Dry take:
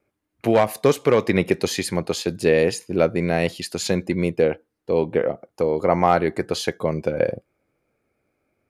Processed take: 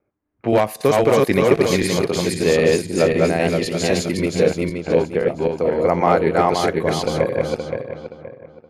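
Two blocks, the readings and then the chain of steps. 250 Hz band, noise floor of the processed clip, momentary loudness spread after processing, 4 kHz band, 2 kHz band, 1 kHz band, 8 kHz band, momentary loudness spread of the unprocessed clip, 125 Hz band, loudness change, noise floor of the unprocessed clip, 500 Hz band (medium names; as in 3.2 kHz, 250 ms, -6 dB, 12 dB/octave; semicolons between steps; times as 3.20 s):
+3.5 dB, -56 dBFS, 9 LU, +3.5 dB, +3.5 dB, +3.5 dB, +3.5 dB, 7 LU, +3.5 dB, +3.0 dB, -78 dBFS, +3.5 dB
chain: backward echo that repeats 261 ms, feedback 56%, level -0.5 dB; level-controlled noise filter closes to 1.5 kHz, open at -16.5 dBFS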